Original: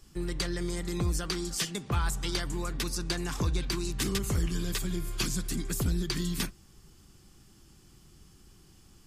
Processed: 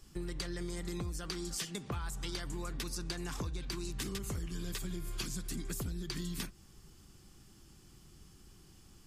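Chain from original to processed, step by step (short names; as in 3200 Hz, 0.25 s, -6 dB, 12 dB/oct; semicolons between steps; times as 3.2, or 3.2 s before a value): compressor, threshold -34 dBFS, peak gain reduction 10.5 dB; gain -1.5 dB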